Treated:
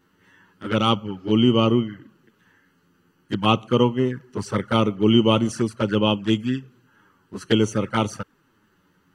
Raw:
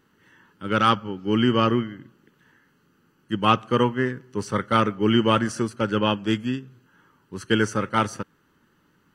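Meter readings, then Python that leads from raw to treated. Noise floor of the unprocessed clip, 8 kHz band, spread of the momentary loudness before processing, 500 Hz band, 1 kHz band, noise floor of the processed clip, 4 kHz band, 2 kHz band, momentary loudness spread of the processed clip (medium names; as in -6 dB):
-65 dBFS, +1.0 dB, 13 LU, +2.5 dB, -3.0 dB, -64 dBFS, +3.0 dB, -3.5 dB, 14 LU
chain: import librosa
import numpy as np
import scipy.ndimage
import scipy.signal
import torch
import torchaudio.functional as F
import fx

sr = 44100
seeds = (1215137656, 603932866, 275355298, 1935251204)

y = fx.env_flanger(x, sr, rest_ms=11.5, full_db=-19.0)
y = y * librosa.db_to_amplitude(3.5)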